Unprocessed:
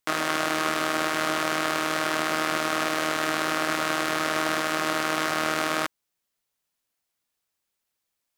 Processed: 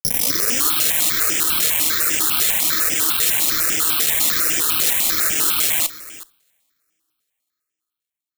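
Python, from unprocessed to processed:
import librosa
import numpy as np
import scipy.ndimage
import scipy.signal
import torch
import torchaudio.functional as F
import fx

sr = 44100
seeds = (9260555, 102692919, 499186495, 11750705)

y = fx.tape_start_head(x, sr, length_s=0.68)
y = fx.weighting(y, sr, curve='D')
y = fx.dereverb_blind(y, sr, rt60_s=1.6)
y = scipy.signal.sosfilt(scipy.signal.ellip(3, 1.0, 40, [510.0, 1200.0], 'bandstop', fs=sr, output='sos'), y)
y = fx.low_shelf(y, sr, hz=340.0, db=4.5)
y = fx.fuzz(y, sr, gain_db=34.0, gate_db=-37.0)
y = y + 10.0 ** (-17.0 / 20.0) * np.pad(y, (int(369 * sr / 1000.0), 0))[:len(y)]
y = fx.rev_double_slope(y, sr, seeds[0], early_s=0.58, late_s=4.1, knee_db=-28, drr_db=18.0)
y = (np.kron(y[::8], np.eye(8)[0]) * 8)[:len(y)]
y = fx.phaser_held(y, sr, hz=10.0, low_hz=280.0, high_hz=4100.0)
y = y * librosa.db_to_amplitude(-8.5)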